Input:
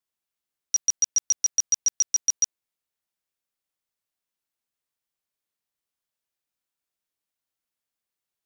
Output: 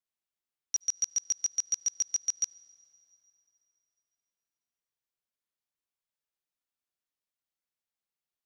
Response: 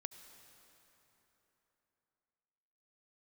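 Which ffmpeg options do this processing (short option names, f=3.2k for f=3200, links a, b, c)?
-filter_complex "[0:a]asplit=2[a][b];[1:a]atrim=start_sample=2205,lowpass=8.2k[c];[b][c]afir=irnorm=-1:irlink=0,volume=-6dB[d];[a][d]amix=inputs=2:normalize=0,volume=-8.5dB"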